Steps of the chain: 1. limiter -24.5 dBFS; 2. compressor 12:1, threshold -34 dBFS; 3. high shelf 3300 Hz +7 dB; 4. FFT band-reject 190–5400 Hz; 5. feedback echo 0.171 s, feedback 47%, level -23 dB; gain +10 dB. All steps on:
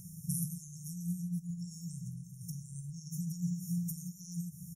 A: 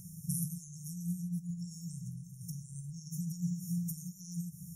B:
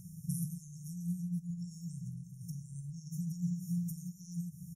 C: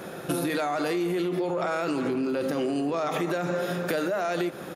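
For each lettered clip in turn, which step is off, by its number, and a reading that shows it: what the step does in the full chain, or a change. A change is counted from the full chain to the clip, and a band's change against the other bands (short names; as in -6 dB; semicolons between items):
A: 5, echo-to-direct -22.0 dB to none; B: 3, 8 kHz band -6.0 dB; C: 4, 4 kHz band +18.0 dB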